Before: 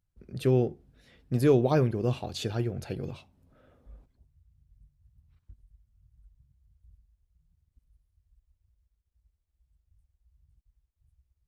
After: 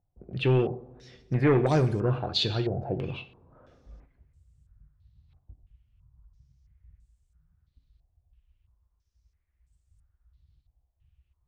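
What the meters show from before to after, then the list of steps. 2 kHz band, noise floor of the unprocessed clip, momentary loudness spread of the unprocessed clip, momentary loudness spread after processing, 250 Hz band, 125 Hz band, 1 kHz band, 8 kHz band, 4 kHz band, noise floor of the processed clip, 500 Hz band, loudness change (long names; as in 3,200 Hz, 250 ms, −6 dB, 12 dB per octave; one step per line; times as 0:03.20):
+6.5 dB, −79 dBFS, 14 LU, 14 LU, +0.5 dB, +2.0 dB, +3.0 dB, −3.5 dB, +10.5 dB, −75 dBFS, 0.0 dB, +1.0 dB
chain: coupled-rooms reverb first 0.51 s, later 2.1 s, from −20 dB, DRR 9 dB
soft clipping −18 dBFS, distortion −14 dB
low-pass on a step sequencer 3 Hz 730–8,000 Hz
level +2 dB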